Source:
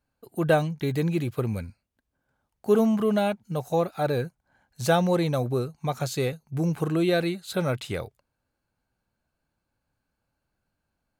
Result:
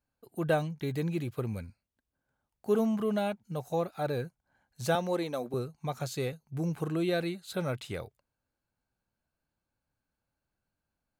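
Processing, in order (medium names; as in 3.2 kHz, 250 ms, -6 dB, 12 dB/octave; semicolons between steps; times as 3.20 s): 4.95–5.54 s: high-pass 210 Hz 24 dB/octave; trim -6.5 dB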